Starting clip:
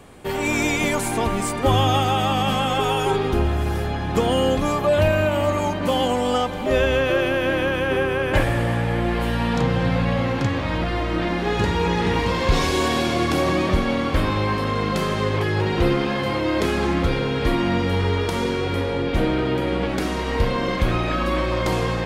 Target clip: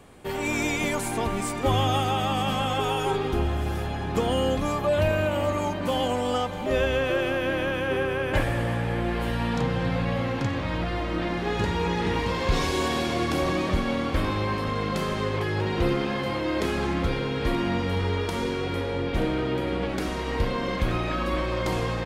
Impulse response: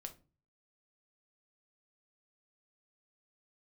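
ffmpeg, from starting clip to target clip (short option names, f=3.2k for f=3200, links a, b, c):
-af "aecho=1:1:929:0.158,volume=-5dB"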